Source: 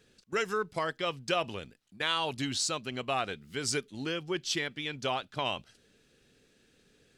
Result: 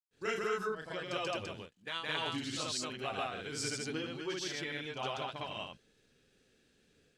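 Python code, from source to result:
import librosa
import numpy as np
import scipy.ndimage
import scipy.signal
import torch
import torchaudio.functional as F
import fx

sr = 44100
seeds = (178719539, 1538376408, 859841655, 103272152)

y = fx.granulator(x, sr, seeds[0], grain_ms=254.0, per_s=31.0, spray_ms=170.0, spread_st=0)
y = F.gain(torch.from_numpy(y), 3.0).numpy()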